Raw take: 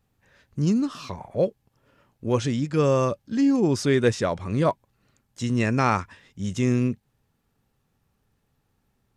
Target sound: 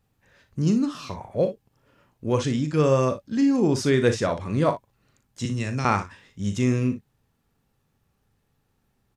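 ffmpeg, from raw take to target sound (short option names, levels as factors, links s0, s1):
-filter_complex "[0:a]asettb=1/sr,asplit=3[s0][s1][s2];[s0]atrim=end=5.454[s3];[s1]atrim=start=5.45:end=5.85,asetpts=PTS-STARTPTS,afade=t=in:d=0.004:c=qsin,afade=t=out:st=0.396:d=0.004:c=qsin,acrossover=split=140|3000[s4][s5][s6];[s5]acompressor=threshold=0.0316:ratio=6[s7];[s4][s7][s6]amix=inputs=3:normalize=0[s8];[s2]atrim=start=5.846[s9];[s3][s8]acrossfade=d=0.004:c1=hsin:c2=qsin[s10];[s10][s9]acrossfade=d=0.004:c1=qsin:c2=hsin,asplit=2[s11][s12];[s12]aecho=0:1:39|59:0.299|0.251[s13];[s11][s13]amix=inputs=2:normalize=0"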